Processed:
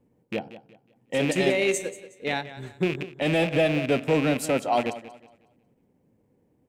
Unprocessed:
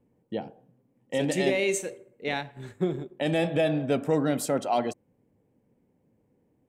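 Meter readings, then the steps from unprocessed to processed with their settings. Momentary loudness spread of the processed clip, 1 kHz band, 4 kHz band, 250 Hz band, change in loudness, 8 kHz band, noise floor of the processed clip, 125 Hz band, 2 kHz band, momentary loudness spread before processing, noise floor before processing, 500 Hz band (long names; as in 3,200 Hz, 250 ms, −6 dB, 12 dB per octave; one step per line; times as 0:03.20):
12 LU, +2.5 dB, +4.0 dB, +2.0 dB, +2.5 dB, +0.5 dB, −67 dBFS, +2.0 dB, +5.0 dB, 12 LU, −70 dBFS, +2.0 dB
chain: loose part that buzzes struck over −34 dBFS, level −23 dBFS
transient designer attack −1 dB, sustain −5 dB
feedback echo with a swinging delay time 183 ms, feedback 32%, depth 63 cents, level −15 dB
level +2.5 dB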